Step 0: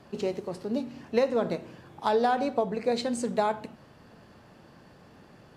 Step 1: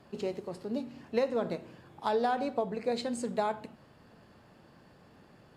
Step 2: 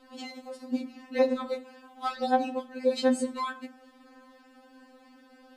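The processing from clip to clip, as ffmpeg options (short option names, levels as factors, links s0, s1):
-af "bandreject=f=5900:w=13,volume=0.596"
-af "afftfilt=real='re*3.46*eq(mod(b,12),0)':imag='im*3.46*eq(mod(b,12),0)':win_size=2048:overlap=0.75,volume=2"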